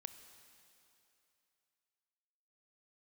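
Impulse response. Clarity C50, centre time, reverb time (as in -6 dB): 10.0 dB, 25 ms, 2.9 s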